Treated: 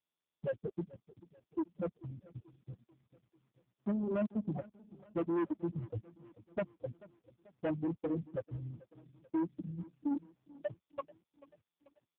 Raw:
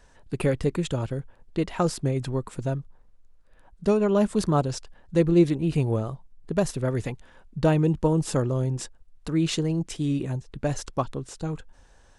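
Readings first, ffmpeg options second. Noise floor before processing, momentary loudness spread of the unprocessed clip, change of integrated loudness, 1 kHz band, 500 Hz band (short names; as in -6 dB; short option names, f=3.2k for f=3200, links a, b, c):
-56 dBFS, 13 LU, -13.5 dB, -16.0 dB, -14.0 dB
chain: -filter_complex "[0:a]bandreject=f=60.23:t=h:w=4,bandreject=f=120.46:t=h:w=4,bandreject=f=180.69:t=h:w=4,bandreject=f=240.92:t=h:w=4,bandreject=f=301.15:t=h:w=4,afftfilt=real='re*gte(hypot(re,im),0.562)':imag='im*gte(hypot(re,im),0.562)':win_size=1024:overlap=0.75,aecho=1:1:3.5:0.83,adynamicequalizer=threshold=0.002:dfrequency=2100:dqfactor=2.7:tfrequency=2100:tqfactor=2.7:attack=5:release=100:ratio=0.375:range=2:mode=cutabove:tftype=bell,asplit=2[a][b];[b]acompressor=threshold=-27dB:ratio=16,volume=2dB[c];[a][c]amix=inputs=2:normalize=0,aeval=exprs='(tanh(11.2*val(0)+0.1)-tanh(0.1))/11.2':c=same,asplit=2[d][e];[e]aecho=0:1:438|876|1314|1752:0.0944|0.0519|0.0286|0.0157[f];[d][f]amix=inputs=2:normalize=0,volume=-8dB" -ar 8000 -c:a libopencore_amrnb -b:a 5150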